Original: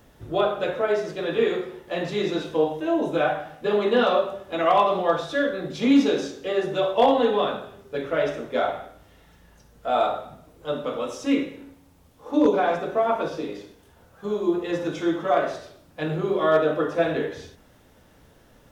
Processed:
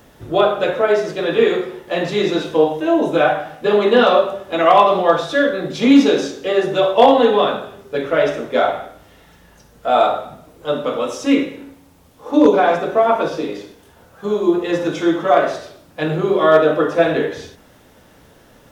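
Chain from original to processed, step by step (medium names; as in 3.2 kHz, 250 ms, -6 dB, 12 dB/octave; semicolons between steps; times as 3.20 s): bass shelf 100 Hz -7 dB; trim +8 dB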